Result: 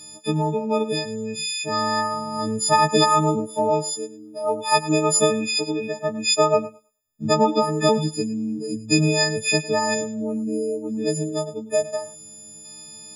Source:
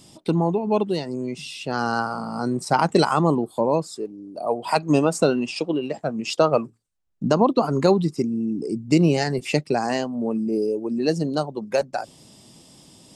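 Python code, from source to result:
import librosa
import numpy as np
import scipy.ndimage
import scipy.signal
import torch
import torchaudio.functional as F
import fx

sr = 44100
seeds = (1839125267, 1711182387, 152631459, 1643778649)

y = fx.freq_snap(x, sr, grid_st=6)
y = fx.echo_thinned(y, sr, ms=105, feedback_pct=17, hz=400.0, wet_db=-15)
y = fx.spec_box(y, sr, start_s=9.94, length_s=2.71, low_hz=800.0, high_hz=6300.0, gain_db=-9)
y = y * librosa.db_to_amplitude(-2.0)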